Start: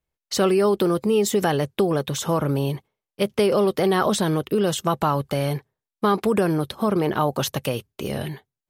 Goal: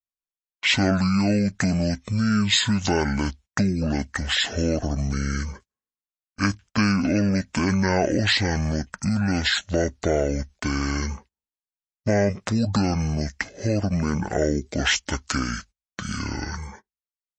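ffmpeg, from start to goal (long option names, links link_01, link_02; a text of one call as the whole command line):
ffmpeg -i in.wav -af "asetrate=22050,aresample=44100,tiltshelf=frequency=970:gain=-5,agate=range=-22dB:threshold=-46dB:ratio=16:detection=peak,volume=2dB" out.wav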